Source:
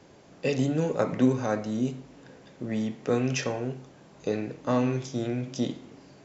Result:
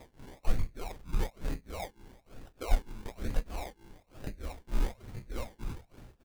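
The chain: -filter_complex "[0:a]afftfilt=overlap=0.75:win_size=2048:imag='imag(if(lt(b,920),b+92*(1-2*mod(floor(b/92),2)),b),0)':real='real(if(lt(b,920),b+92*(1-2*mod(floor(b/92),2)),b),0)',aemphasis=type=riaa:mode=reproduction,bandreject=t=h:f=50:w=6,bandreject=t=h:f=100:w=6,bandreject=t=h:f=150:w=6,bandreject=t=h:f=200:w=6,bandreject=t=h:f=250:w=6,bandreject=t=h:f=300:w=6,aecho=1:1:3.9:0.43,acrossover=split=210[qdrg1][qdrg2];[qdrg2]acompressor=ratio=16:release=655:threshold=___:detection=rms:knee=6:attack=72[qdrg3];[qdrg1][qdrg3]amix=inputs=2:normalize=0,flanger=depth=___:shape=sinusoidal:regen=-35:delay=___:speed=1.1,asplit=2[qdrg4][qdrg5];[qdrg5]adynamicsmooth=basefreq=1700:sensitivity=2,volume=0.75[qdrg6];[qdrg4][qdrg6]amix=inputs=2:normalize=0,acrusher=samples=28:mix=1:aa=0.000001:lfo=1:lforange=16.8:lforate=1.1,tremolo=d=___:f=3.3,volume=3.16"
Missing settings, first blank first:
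0.00794, 8.2, 3, 0.95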